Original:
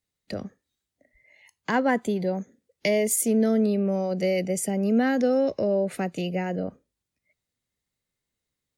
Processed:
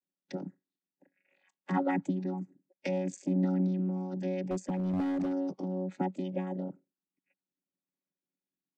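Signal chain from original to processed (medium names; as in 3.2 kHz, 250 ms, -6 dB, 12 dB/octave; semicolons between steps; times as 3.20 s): vocoder on a held chord bare fifth, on F#3; harmonic-percussive split harmonic -13 dB; 4.48–5.33 s: overload inside the chain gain 32.5 dB; trim +5.5 dB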